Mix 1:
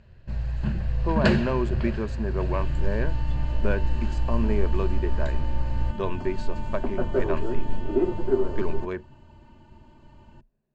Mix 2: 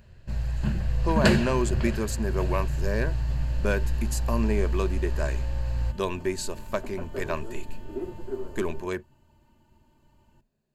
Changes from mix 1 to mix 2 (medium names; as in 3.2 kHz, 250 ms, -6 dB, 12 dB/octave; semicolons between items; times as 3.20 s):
speech: remove low-pass 2.3 kHz 6 dB/octave; second sound -11.0 dB; master: remove distance through air 130 m